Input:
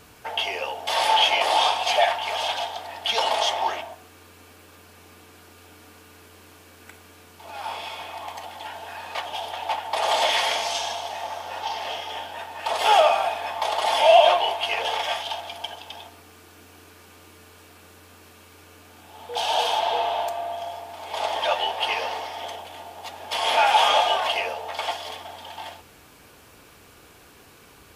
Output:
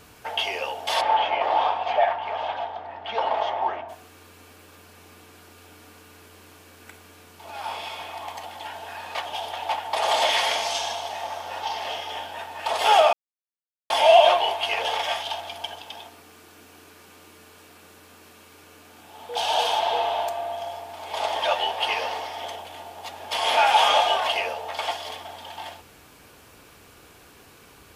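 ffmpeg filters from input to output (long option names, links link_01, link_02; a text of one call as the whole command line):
ffmpeg -i in.wav -filter_complex "[0:a]asplit=3[link_01][link_02][link_03];[link_01]afade=type=out:start_time=1:duration=0.02[link_04];[link_02]lowpass=1600,afade=type=in:start_time=1:duration=0.02,afade=type=out:start_time=3.88:duration=0.02[link_05];[link_03]afade=type=in:start_time=3.88:duration=0.02[link_06];[link_04][link_05][link_06]amix=inputs=3:normalize=0,asettb=1/sr,asplit=3[link_07][link_08][link_09];[link_07]atrim=end=15.824[link_10];[link_08]atrim=start=15.82:end=19.38,asetpts=PTS-STARTPTS,afade=type=in:duration=0.004:curve=qsin,afade=type=out:start_time=3.556:duration=0.004:curve=qsin,highpass=110[link_11];[link_09]atrim=start=19.376[link_12];[link_10][link_11]acrossfade=duration=0.004:curve1=hsin:curve2=qsin[link_13];[link_13][link_12]acrossfade=duration=0.004:curve1=qsin:curve2=hsin,asplit=3[link_14][link_15][link_16];[link_14]atrim=end=13.13,asetpts=PTS-STARTPTS,afade=type=out:start_time=13.126:duration=0.004:curve=hsin[link_17];[link_15]atrim=start=13.13:end=13.9,asetpts=PTS-STARTPTS,volume=0[link_18];[link_16]atrim=start=13.9,asetpts=PTS-STARTPTS,afade=type=in:duration=0.004:curve=hsin[link_19];[link_17][link_18][link_19]concat=n=3:v=0:a=1" out.wav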